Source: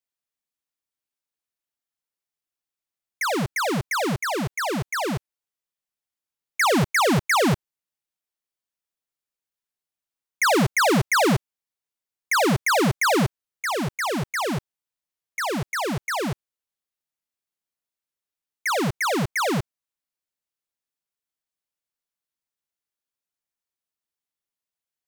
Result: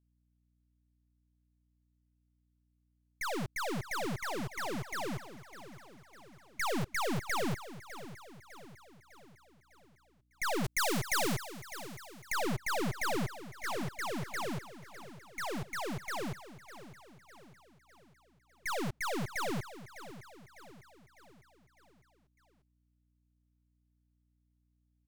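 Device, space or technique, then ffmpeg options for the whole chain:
valve amplifier with mains hum: -filter_complex "[0:a]aeval=exprs='(tanh(15.8*val(0)+0.65)-tanh(0.65))/15.8':c=same,aeval=exprs='val(0)+0.000562*(sin(2*PI*60*n/s)+sin(2*PI*2*60*n/s)/2+sin(2*PI*3*60*n/s)/3+sin(2*PI*4*60*n/s)/4+sin(2*PI*5*60*n/s)/5)':c=same,aecho=1:1:603|1206|1809|2412|3015:0.2|0.102|0.0519|0.0265|0.0135,asettb=1/sr,asplit=3[s0][s1][s2];[s0]atrim=end=10.644[s3];[s1]atrim=start=10.64:end=12.32,asetpts=PTS-STARTPTS,afade=t=in:d=0.004:c=qsin,afade=t=out:st=1.676:d=0.004:c=qsin,highshelf=f=3200:g=9[s4];[s2]atrim=start=12.316[s5];[s3][s4]acrossfade=d=0.004:c1=hsin:c2=qsin[s6];[s6][s5]acrossfade=d=0.004:c1=qsin:c2=hsin,volume=0.398"

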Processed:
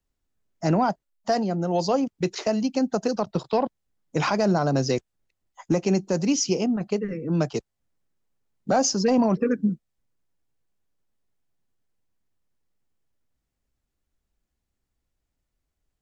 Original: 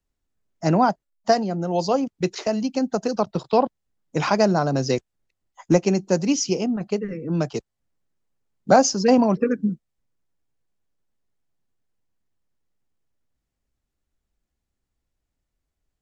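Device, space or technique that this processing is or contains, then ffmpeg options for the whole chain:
soft clipper into limiter: -af "asoftclip=type=tanh:threshold=0.631,alimiter=limit=0.224:level=0:latency=1:release=33"

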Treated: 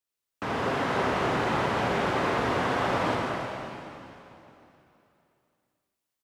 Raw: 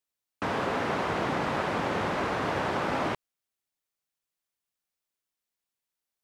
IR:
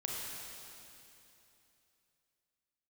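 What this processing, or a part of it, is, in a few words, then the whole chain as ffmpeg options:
cave: -filter_complex "[0:a]aecho=1:1:303:0.188[s0];[1:a]atrim=start_sample=2205[s1];[s0][s1]afir=irnorm=-1:irlink=0"

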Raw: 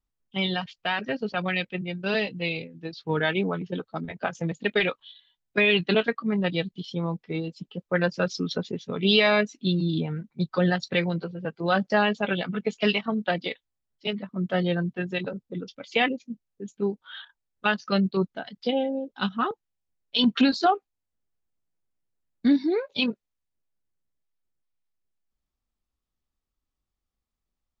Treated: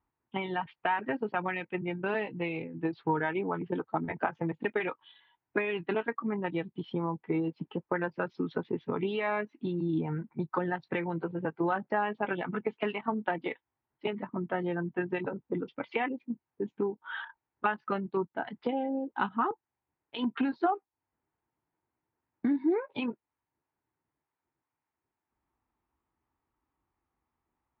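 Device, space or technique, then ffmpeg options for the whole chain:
bass amplifier: -af "acompressor=threshold=0.0158:ratio=5,highpass=90,equalizer=f=190:t=q:w=4:g=-7,equalizer=f=330:t=q:w=4:g=5,equalizer=f=560:t=q:w=4:g=-5,equalizer=f=910:t=q:w=4:g=10,lowpass=f=2200:w=0.5412,lowpass=f=2200:w=1.3066,volume=2.37"

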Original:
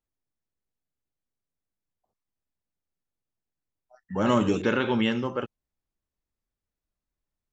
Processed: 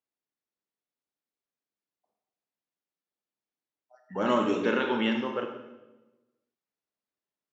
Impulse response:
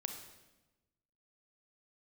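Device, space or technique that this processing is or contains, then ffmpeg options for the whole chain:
supermarket ceiling speaker: -filter_complex "[0:a]highpass=260,lowpass=5300[s0];[1:a]atrim=start_sample=2205[s1];[s0][s1]afir=irnorm=-1:irlink=0"

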